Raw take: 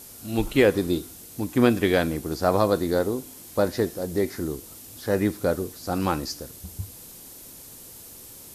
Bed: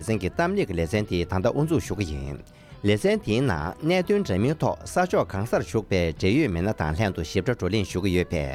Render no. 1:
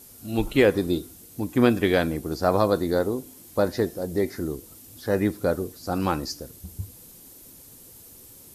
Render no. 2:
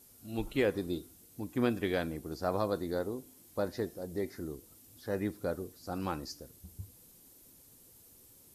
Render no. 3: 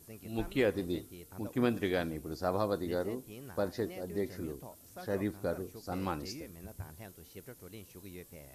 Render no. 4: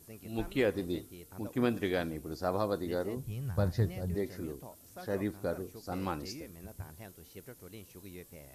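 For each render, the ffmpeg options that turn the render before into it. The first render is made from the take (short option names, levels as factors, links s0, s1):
-af "afftdn=nr=6:nf=-45"
-af "volume=0.282"
-filter_complex "[1:a]volume=0.0531[s0];[0:a][s0]amix=inputs=2:normalize=0"
-filter_complex "[0:a]asettb=1/sr,asplit=3[s0][s1][s2];[s0]atrim=end=3.164[s3];[s1]atrim=start=3.16:end=4.15,asetpts=PTS-STARTPTS,afade=t=in:d=0.004:c=qsin,afade=t=out:st=0.986:d=0.004:c=qsin,lowshelf=f=190:t=q:w=1.5:g=13.5[s4];[s2]atrim=start=4.146[s5];[s3][s4]acrossfade=d=0.004:c1=hsin:c2=qsin[s6];[s6][s5]acrossfade=d=0.004:c1=qsin:c2=hsin"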